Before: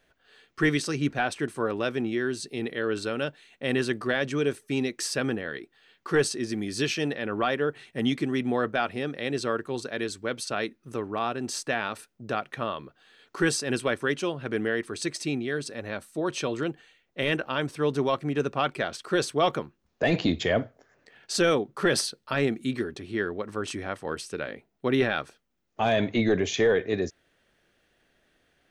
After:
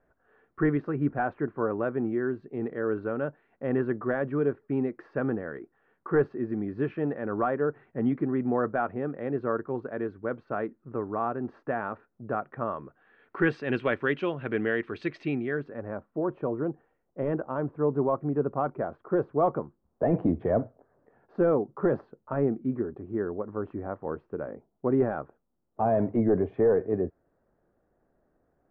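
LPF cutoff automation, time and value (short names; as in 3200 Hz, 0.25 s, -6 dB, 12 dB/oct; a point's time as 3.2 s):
LPF 24 dB/oct
12.64 s 1400 Hz
13.74 s 2700 Hz
15.2 s 2700 Hz
16.04 s 1100 Hz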